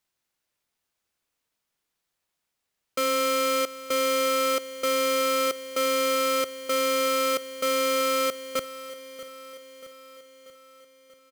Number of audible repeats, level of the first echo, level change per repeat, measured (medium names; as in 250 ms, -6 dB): 5, -15.5 dB, -4.5 dB